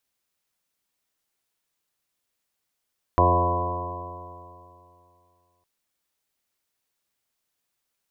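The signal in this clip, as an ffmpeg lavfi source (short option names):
-f lavfi -i "aevalsrc='0.1*pow(10,-3*t/2.65)*sin(2*PI*87.03*t)+0.0266*pow(10,-3*t/2.65)*sin(2*PI*174.25*t)+0.0237*pow(10,-3*t/2.65)*sin(2*PI*261.83*t)+0.0562*pow(10,-3*t/2.65)*sin(2*PI*349.97*t)+0.0376*pow(10,-3*t/2.65)*sin(2*PI*438.84*t)+0.0562*pow(10,-3*t/2.65)*sin(2*PI*528.63*t)+0.0501*pow(10,-3*t/2.65)*sin(2*PI*619.5*t)+0.0708*pow(10,-3*t/2.65)*sin(2*PI*711.64*t)+0.0141*pow(10,-3*t/2.65)*sin(2*PI*805.2*t)+0.015*pow(10,-3*t/2.65)*sin(2*PI*900.36*t)+0.133*pow(10,-3*t/2.65)*sin(2*PI*997.26*t)+0.0447*pow(10,-3*t/2.65)*sin(2*PI*1096.07*t)':d=2.46:s=44100"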